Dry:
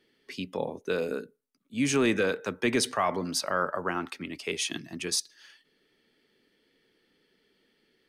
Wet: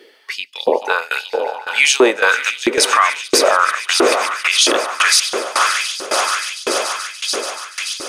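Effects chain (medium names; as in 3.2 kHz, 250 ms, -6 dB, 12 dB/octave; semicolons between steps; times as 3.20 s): echo with a slow build-up 144 ms, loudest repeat 8, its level -16 dB; LFO high-pass saw up 1.5 Hz 350–4500 Hz; 0.72–2.11 s: peaking EQ 840 Hz +12 dB 1 oct; tremolo saw down 1.8 Hz, depth 90%; bass shelf 150 Hz -12 dB; loudness maximiser +22.5 dB; trim -1 dB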